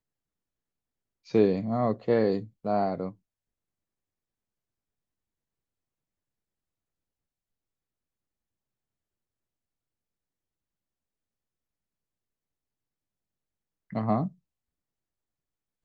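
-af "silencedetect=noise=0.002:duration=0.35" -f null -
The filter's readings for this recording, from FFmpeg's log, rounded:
silence_start: 0.00
silence_end: 1.25 | silence_duration: 1.25
silence_start: 3.15
silence_end: 13.90 | silence_duration: 10.76
silence_start: 14.34
silence_end: 15.84 | silence_duration: 1.50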